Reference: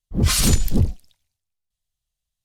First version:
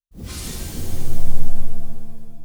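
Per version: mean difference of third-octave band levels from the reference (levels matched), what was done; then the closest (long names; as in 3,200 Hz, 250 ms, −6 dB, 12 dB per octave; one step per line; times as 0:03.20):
10.5 dB: noise that follows the level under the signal 20 dB
reverb with rising layers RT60 2.3 s, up +7 semitones, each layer −2 dB, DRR −2.5 dB
level −17 dB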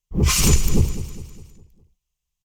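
4.5 dB: EQ curve with evenly spaced ripples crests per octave 0.75, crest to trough 8 dB
on a send: repeating echo 204 ms, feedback 47%, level −12.5 dB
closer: second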